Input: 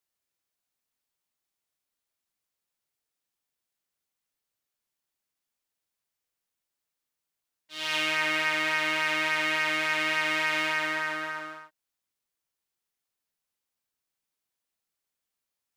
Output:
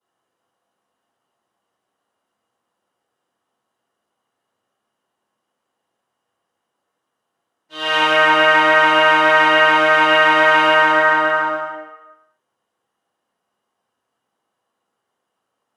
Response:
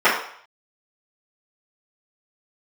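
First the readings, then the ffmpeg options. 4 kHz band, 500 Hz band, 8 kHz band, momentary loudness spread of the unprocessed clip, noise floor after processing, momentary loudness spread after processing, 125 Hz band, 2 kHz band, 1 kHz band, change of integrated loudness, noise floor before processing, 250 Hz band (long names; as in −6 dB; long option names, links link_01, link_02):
+10.5 dB, +20.0 dB, can't be measured, 9 LU, −77 dBFS, 8 LU, +10.5 dB, +13.0 dB, +19.0 dB, +13.5 dB, below −85 dBFS, +13.0 dB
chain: -filter_complex "[1:a]atrim=start_sample=2205,asetrate=24255,aresample=44100[link_01];[0:a][link_01]afir=irnorm=-1:irlink=0,volume=-9dB"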